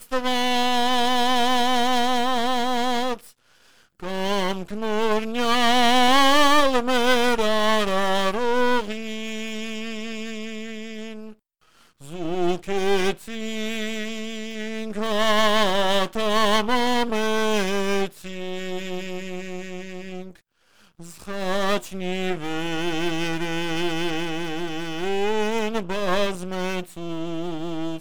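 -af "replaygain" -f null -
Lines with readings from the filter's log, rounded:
track_gain = +3.2 dB
track_peak = 0.467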